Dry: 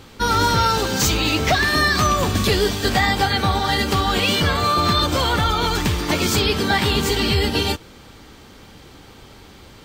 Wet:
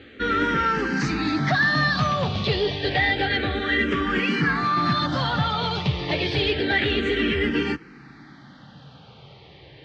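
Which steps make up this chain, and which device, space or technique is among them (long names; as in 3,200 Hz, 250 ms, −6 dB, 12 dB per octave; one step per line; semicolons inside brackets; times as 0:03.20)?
barber-pole phaser into a guitar amplifier (frequency shifter mixed with the dry sound −0.29 Hz; soft clipping −15 dBFS, distortion −18 dB; loudspeaker in its box 79–4,100 Hz, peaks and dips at 97 Hz −5 dB, 140 Hz +8 dB, 290 Hz +4 dB, 1,000 Hz −5 dB, 1,800 Hz +7 dB)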